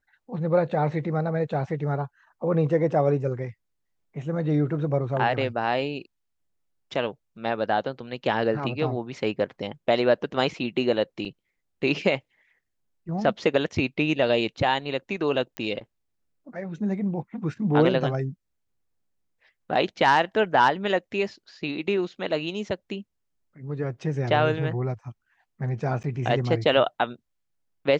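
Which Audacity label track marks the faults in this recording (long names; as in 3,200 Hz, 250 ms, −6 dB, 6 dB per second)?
11.250000	11.260000	drop-out 5.1 ms
15.570000	15.570000	click −17 dBFS
26.030000	26.040000	drop-out 8.9 ms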